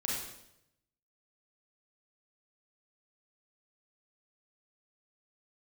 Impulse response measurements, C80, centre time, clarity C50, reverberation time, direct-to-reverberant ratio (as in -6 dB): 3.5 dB, 65 ms, -0.5 dB, 0.80 s, -4.5 dB